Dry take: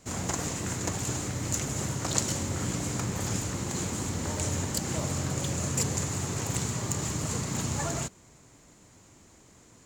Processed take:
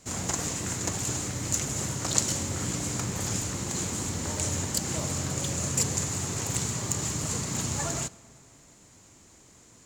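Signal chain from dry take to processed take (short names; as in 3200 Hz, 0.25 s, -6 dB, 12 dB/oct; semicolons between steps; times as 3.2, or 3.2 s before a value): bell 7600 Hz +4.5 dB 2.6 oct; on a send: reverb RT60 2.4 s, pre-delay 10 ms, DRR 20.5 dB; on the sum: gain -1 dB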